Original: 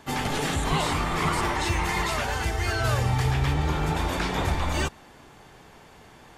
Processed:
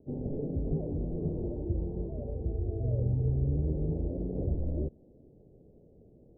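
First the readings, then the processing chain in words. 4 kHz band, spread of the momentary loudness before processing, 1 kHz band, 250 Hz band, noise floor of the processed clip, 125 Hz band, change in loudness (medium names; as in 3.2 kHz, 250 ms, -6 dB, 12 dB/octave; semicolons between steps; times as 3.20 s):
under -40 dB, 3 LU, under -25 dB, -4.0 dB, -59 dBFS, -4.0 dB, -7.0 dB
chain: steep low-pass 560 Hz 48 dB/octave; trim -4 dB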